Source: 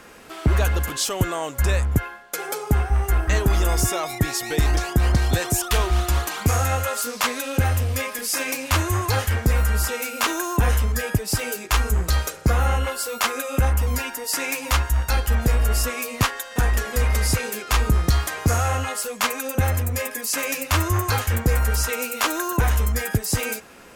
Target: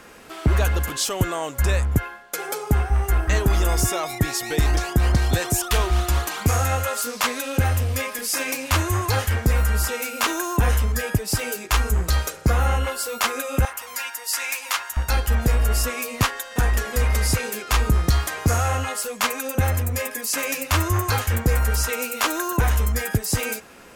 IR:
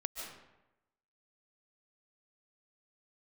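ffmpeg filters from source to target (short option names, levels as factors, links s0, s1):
-filter_complex "[0:a]asettb=1/sr,asplit=3[s0][s1][s2];[s0]atrim=end=13.654[s3];[s1]atrim=start=13.65:end=14.97,asetpts=PTS-STARTPTS,afade=t=in:d=0.004:c=qsin,afade=t=out:st=1.316:d=0.004:c=qsin,highpass=970[s4];[s2]atrim=start=14.966[s5];[s3][s4]acrossfade=d=0.004:c1=hsin:c2=qsin[s6];[s6][s5]acrossfade=d=0.004:c1=qsin:c2=hsin"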